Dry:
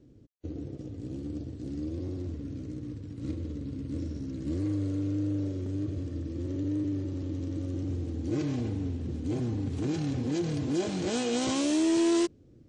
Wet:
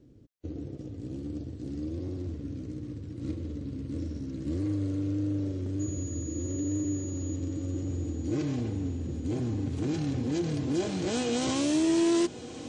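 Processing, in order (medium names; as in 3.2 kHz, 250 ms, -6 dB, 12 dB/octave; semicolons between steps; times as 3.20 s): 5.79–7.35 s: whistle 6.8 kHz -42 dBFS; echo that smears into a reverb 1249 ms, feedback 43%, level -13 dB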